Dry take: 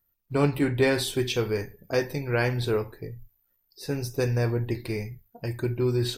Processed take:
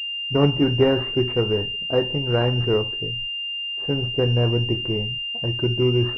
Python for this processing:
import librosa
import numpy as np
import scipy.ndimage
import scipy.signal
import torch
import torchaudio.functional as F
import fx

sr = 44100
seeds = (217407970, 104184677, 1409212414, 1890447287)

y = fx.air_absorb(x, sr, metres=270.0)
y = fx.pwm(y, sr, carrier_hz=2800.0)
y = F.gain(torch.from_numpy(y), 5.5).numpy()